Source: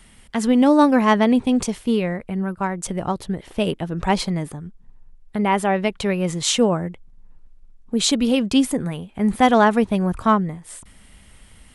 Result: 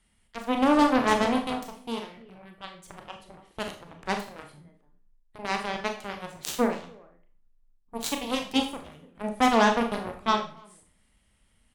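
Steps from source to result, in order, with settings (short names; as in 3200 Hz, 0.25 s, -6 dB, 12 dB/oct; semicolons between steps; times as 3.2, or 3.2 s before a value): speakerphone echo 0.29 s, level -11 dB; added harmonics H 7 -15 dB, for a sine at -2.5 dBFS; Schroeder reverb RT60 0.39 s, combs from 27 ms, DRR 4 dB; gain -7 dB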